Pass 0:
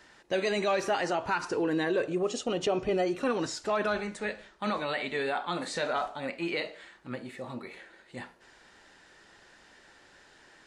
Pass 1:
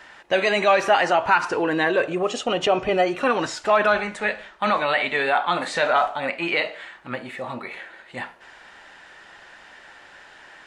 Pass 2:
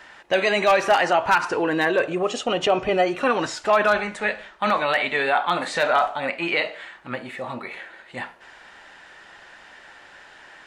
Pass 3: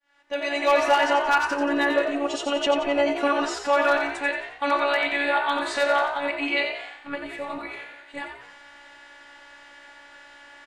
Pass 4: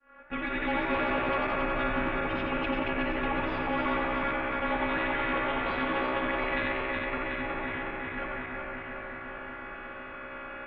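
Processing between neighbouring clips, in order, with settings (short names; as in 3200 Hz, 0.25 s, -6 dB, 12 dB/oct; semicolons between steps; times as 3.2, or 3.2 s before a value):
band shelf 1400 Hz +8 dB 2.8 oct; gain +4 dB
wavefolder -9 dBFS
opening faded in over 0.80 s; robotiser 284 Hz; frequency-shifting echo 89 ms, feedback 44%, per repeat +62 Hz, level -7 dB
regenerating reverse delay 0.184 s, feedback 78%, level -5 dB; mistuned SSB -310 Hz 190–2600 Hz; spectral compressor 2:1; gain -9 dB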